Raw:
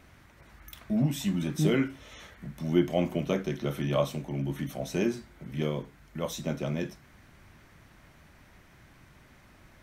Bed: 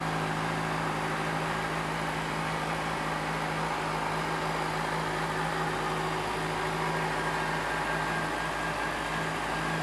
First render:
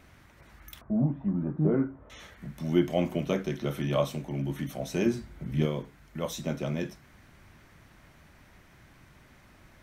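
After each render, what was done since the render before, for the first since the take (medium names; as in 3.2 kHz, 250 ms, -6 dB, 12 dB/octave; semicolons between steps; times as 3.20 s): 0.81–2.10 s: low-pass 1.2 kHz 24 dB/octave; 5.06–5.66 s: bass shelf 210 Hz +9.5 dB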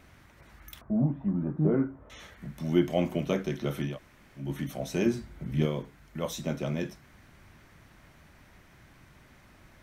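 3.91–4.43 s: room tone, crossfade 0.16 s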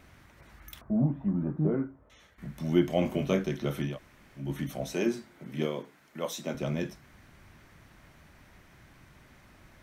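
1.52–2.38 s: fade out quadratic, to -11 dB; 3.00–3.44 s: doubling 21 ms -6 dB; 4.93–6.55 s: high-pass 250 Hz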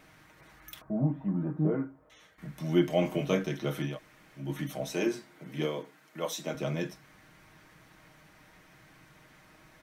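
bass shelf 130 Hz -10 dB; comb 6.4 ms, depth 51%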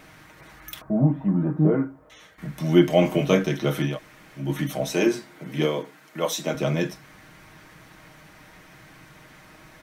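trim +8.5 dB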